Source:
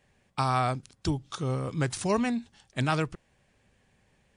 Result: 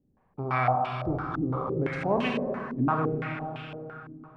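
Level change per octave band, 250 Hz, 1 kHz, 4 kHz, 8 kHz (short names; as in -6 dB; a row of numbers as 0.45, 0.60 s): +1.5 dB, +3.0 dB, -4.5 dB, under -20 dB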